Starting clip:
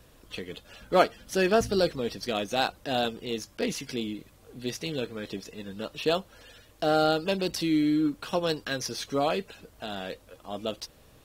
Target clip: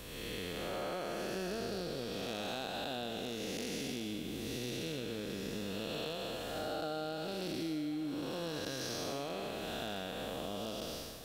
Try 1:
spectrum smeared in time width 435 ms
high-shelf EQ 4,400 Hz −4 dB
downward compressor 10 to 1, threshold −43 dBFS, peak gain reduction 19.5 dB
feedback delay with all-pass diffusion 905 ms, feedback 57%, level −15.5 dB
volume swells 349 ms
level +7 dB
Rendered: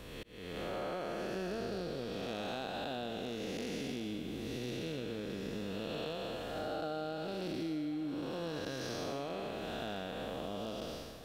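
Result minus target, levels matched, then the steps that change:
8,000 Hz band −6.5 dB
change: high-shelf EQ 4,400 Hz +6.5 dB

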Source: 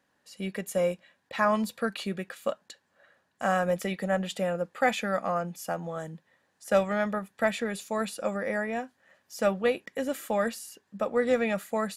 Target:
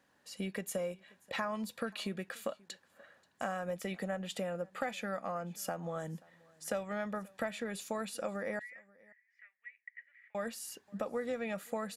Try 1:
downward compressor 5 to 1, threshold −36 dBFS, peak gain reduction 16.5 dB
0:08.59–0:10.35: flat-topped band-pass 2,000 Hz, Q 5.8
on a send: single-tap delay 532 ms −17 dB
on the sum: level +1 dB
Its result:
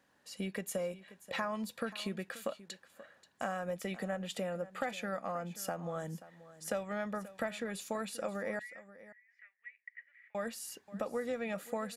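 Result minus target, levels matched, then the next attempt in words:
echo-to-direct +8.5 dB
downward compressor 5 to 1, threshold −36 dBFS, peak gain reduction 16.5 dB
0:08.59–0:10.35: flat-topped band-pass 2,000 Hz, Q 5.8
on a send: single-tap delay 532 ms −25.5 dB
on the sum: level +1 dB

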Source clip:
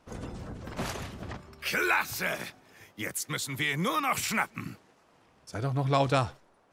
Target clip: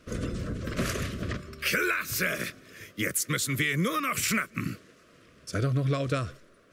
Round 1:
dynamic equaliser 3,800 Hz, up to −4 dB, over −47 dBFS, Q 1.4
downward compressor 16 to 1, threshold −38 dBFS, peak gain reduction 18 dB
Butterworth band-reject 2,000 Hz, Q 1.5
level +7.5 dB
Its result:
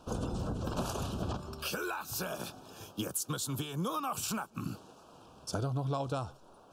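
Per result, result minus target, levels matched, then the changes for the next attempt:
2,000 Hz band −7.5 dB; downward compressor: peak gain reduction +7.5 dB
change: Butterworth band-reject 840 Hz, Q 1.5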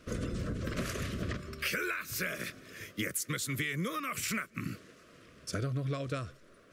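downward compressor: peak gain reduction +7.5 dB
change: downward compressor 16 to 1, threshold −30 dBFS, peak gain reduction 10.5 dB

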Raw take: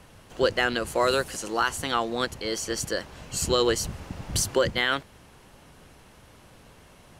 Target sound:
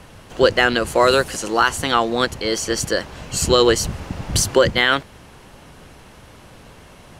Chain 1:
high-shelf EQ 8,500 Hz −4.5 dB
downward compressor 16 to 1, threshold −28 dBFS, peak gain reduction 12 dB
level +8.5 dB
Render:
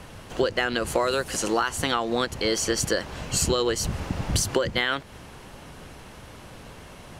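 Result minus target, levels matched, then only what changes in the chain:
downward compressor: peak gain reduction +12 dB
remove: downward compressor 16 to 1, threshold −28 dBFS, peak gain reduction 12 dB

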